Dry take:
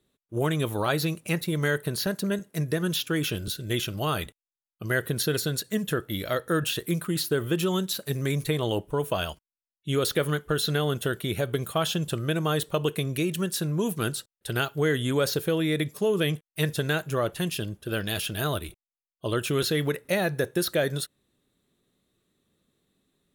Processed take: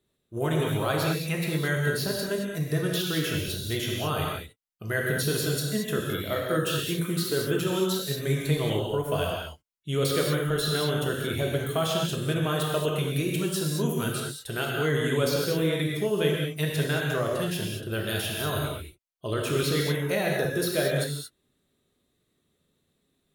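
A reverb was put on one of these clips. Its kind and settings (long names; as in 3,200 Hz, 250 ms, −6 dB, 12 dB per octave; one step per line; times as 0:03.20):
reverb whose tail is shaped and stops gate 250 ms flat, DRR −2 dB
level −4 dB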